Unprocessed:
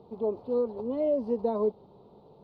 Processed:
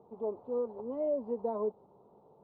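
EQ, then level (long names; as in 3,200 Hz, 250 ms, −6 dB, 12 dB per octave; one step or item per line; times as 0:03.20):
resonant band-pass 1,100 Hz, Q 0.99
spectral tilt −4 dB per octave
−3.5 dB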